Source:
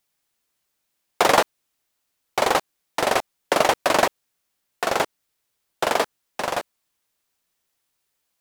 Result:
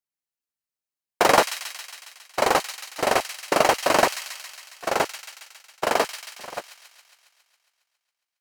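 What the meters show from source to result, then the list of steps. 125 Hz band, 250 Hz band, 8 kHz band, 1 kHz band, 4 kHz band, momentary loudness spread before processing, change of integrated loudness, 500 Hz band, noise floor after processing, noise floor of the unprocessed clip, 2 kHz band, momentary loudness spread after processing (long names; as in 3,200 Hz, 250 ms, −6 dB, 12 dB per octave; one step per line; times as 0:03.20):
−0.5 dB, −0.5 dB, +1.0 dB, −0.5 dB, −0.5 dB, 11 LU, 0.0 dB, −0.5 dB, below −85 dBFS, −76 dBFS, −0.5 dB, 18 LU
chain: notch filter 3,500 Hz, Q 10
noise gate −22 dBFS, range −19 dB
on a send: delay with a high-pass on its return 137 ms, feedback 68%, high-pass 2,800 Hz, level −5.5 dB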